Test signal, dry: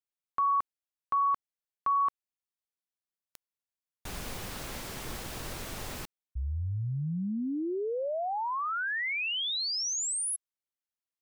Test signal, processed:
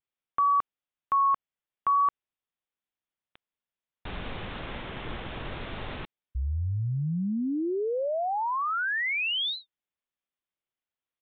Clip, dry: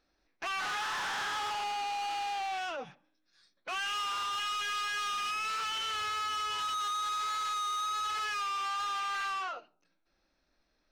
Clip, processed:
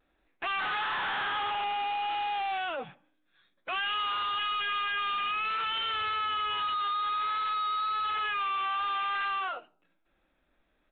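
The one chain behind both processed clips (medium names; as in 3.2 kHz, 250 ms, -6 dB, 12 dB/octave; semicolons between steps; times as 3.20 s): resampled via 8 kHz; vibrato 0.55 Hz 26 cents; trim +3.5 dB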